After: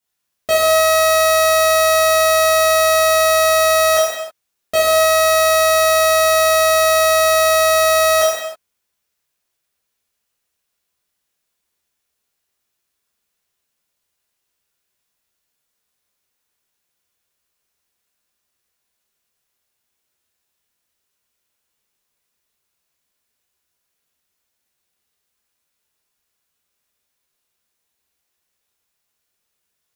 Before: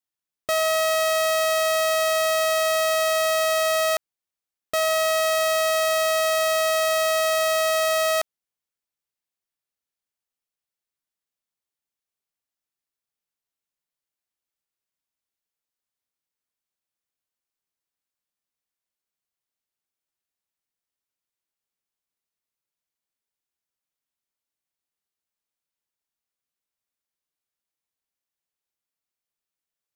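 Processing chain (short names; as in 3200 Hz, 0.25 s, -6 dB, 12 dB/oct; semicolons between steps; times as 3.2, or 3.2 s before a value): soft clip -21.5 dBFS, distortion -16 dB; non-linear reverb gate 0.35 s falling, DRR -8 dB; gain +6 dB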